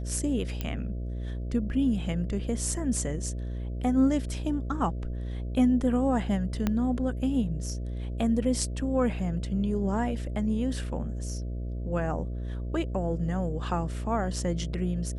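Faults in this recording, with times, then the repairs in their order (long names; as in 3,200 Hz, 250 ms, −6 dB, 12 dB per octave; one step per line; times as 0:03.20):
mains buzz 60 Hz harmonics 11 −33 dBFS
0:00.61: click −17 dBFS
0:06.67: click −13 dBFS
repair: click removal
hum removal 60 Hz, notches 11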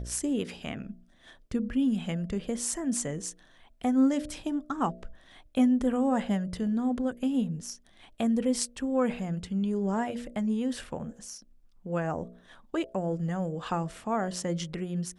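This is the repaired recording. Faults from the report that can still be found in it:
0:06.67: click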